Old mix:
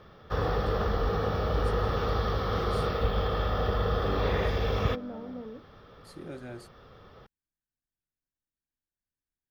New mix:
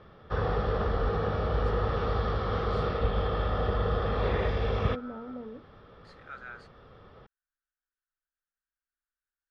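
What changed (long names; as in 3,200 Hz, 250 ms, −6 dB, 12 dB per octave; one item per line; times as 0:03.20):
first voice: add high-pass with resonance 1,300 Hz, resonance Q 5.9
master: add high-frequency loss of the air 160 metres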